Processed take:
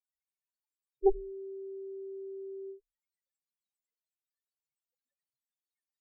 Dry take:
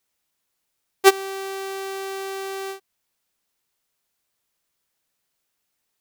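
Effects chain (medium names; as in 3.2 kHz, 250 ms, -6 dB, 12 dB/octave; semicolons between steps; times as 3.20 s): Chebyshev shaper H 3 -21 dB, 6 -11 dB, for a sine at -2.5 dBFS; loudest bins only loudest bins 2; rippled EQ curve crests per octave 1, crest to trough 16 dB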